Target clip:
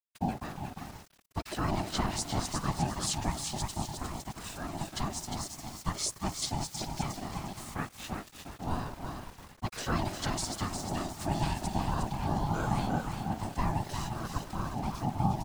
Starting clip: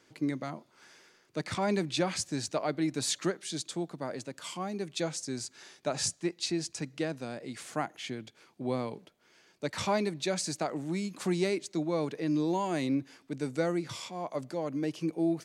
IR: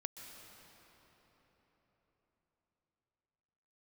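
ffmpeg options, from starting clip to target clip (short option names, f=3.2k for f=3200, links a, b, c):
-filter_complex "[0:a]asplit=5[a][b][c][d][e];[b]adelay=355,afreqshift=37,volume=-5.5dB[f];[c]adelay=710,afreqshift=74,volume=-15.7dB[g];[d]adelay=1065,afreqshift=111,volume=-25.8dB[h];[e]adelay=1420,afreqshift=148,volume=-36dB[i];[a][f][g][h][i]amix=inputs=5:normalize=0,asplit=2[j][k];[1:a]atrim=start_sample=2205,afade=t=out:st=0.42:d=0.01,atrim=end_sample=18963,asetrate=26460,aresample=44100[l];[k][l]afir=irnorm=-1:irlink=0,volume=-2.5dB[m];[j][m]amix=inputs=2:normalize=0,aeval=exprs='val(0)*gte(abs(val(0)),0.0133)':c=same,afftfilt=real='hypot(re,im)*cos(2*PI*random(0))':imag='hypot(re,im)*sin(2*PI*random(1))':win_size=512:overlap=0.75,aeval=exprs='val(0)*sin(2*PI*490*n/s)':c=same,bass=f=250:g=6,treble=f=4k:g=4"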